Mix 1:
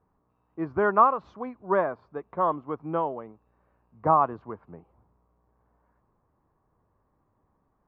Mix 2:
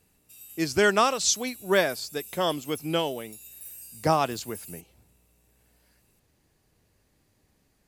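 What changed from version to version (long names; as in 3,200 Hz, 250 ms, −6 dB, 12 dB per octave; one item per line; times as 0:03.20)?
speech −7.5 dB
master: remove transistor ladder low-pass 1,200 Hz, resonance 65%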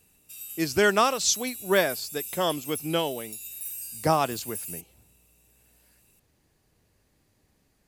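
background +7.0 dB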